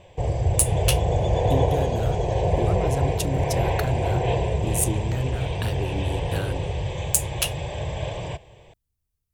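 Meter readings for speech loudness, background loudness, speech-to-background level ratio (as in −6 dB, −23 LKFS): −28.5 LKFS, −25.5 LKFS, −3.0 dB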